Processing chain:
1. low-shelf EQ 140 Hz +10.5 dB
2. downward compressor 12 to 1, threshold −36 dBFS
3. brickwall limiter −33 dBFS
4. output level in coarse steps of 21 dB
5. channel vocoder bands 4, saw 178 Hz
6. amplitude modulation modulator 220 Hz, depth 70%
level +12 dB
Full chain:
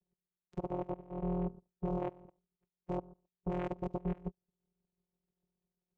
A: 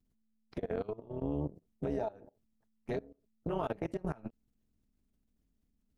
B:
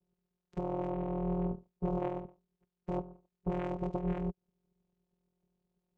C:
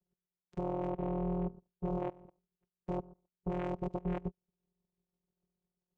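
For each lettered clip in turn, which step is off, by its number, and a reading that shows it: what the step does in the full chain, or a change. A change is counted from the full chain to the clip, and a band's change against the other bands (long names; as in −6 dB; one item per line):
5, 2 kHz band +5.5 dB
4, change in momentary loudness spread +4 LU
3, change in momentary loudness spread +2 LU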